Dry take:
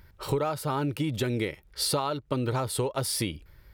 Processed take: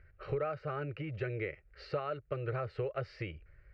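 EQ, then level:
transistor ladder low-pass 3,700 Hz, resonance 50%
high-frequency loss of the air 190 metres
phaser with its sweep stopped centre 930 Hz, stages 6
+5.0 dB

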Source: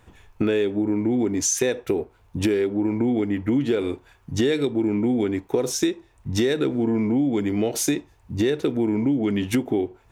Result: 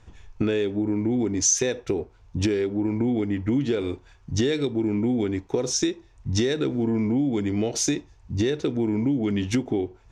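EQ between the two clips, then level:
low-pass with resonance 6,000 Hz, resonance Q 2.2
low-shelf EQ 100 Hz +11.5 dB
−3.5 dB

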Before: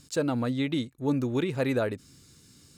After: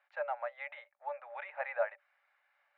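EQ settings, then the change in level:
Chebyshev high-pass with heavy ripple 560 Hz, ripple 9 dB
low-pass filter 1,800 Hz 24 dB per octave
+3.5 dB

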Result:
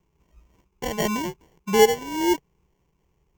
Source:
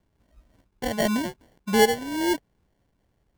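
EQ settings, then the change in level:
EQ curve with evenly spaced ripples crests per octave 0.75, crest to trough 10 dB
0.0 dB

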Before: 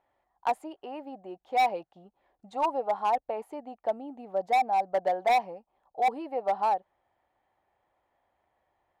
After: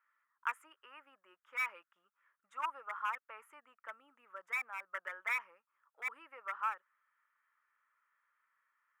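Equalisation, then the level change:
high-pass with resonance 1,300 Hz, resonance Q 5
phaser with its sweep stopped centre 1,800 Hz, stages 4
−3.5 dB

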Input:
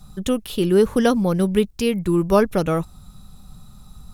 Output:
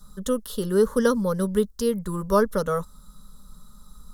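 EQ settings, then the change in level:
parametric band 120 Hz −8.5 dB 1.8 octaves
phaser with its sweep stopped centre 490 Hz, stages 8
0.0 dB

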